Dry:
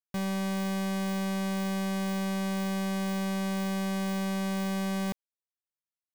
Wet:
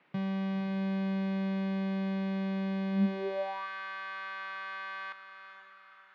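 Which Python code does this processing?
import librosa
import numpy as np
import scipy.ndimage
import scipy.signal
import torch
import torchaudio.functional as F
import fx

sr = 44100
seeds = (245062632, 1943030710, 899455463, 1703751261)

y = scipy.signal.sosfilt(scipy.signal.butter(4, 3600.0, 'lowpass', fs=sr, output='sos'), x)
y = fx.low_shelf(y, sr, hz=200.0, db=-4.0)
y = fx.echo_diffused(y, sr, ms=503, feedback_pct=42, wet_db=-10.0)
y = fx.dmg_noise_band(y, sr, seeds[0], low_hz=200.0, high_hz=2600.0, level_db=-63.0)
y = fx.filter_sweep_highpass(y, sr, from_hz=140.0, to_hz=1300.0, start_s=2.91, end_s=3.68, q=6.5)
y = y * 10.0 ** (-5.5 / 20.0)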